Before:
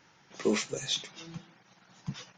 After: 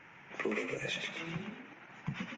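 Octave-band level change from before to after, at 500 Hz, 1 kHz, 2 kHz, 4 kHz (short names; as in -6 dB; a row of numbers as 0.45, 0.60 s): -5.0, 0.0, +3.5, -8.0 dB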